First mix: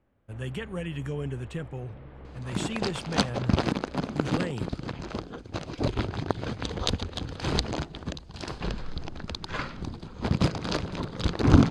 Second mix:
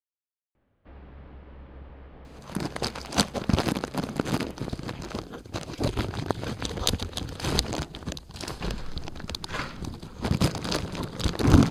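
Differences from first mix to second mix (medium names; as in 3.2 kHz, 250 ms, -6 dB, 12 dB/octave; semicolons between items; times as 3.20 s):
speech: muted; first sound: entry +0.55 s; master: remove distance through air 90 m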